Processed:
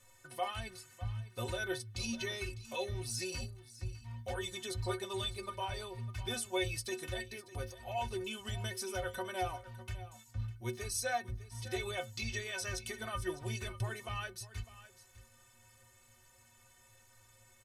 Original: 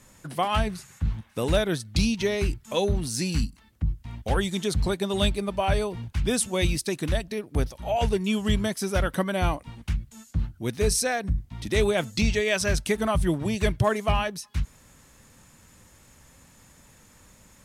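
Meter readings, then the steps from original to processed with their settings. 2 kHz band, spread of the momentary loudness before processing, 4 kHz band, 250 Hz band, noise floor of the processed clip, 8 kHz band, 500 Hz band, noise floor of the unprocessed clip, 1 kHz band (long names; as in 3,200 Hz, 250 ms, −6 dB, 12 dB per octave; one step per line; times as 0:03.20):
−10.0 dB, 8 LU, −9.5 dB, −18.0 dB, −64 dBFS, −10.0 dB, −14.5 dB, −56 dBFS, −11.0 dB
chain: parametric band 210 Hz −13.5 dB 1.1 octaves
brickwall limiter −19 dBFS, peak gain reduction 7.5 dB
stiff-string resonator 110 Hz, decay 0.32 s, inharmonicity 0.03
single-tap delay 603 ms −16 dB
level +2.5 dB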